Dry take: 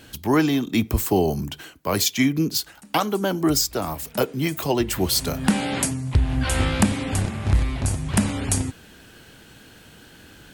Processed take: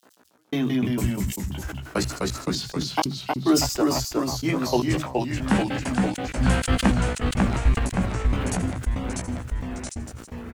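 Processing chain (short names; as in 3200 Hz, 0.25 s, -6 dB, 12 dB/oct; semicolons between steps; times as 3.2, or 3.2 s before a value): low-pass opened by the level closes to 800 Hz, open at -16.5 dBFS; high shelf 6000 Hz -11 dB; sample gate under -46.5 dBFS; three bands offset in time highs, mids, lows 30/100 ms, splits 160/3600 Hz; step gate "x......xxx.x." 200 bpm -60 dB; echoes that change speed 0.138 s, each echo -1 st, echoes 3; doubler 16 ms -6.5 dB; thin delay 79 ms, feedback 67%, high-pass 5400 Hz, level -15.5 dB; sustainer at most 83 dB/s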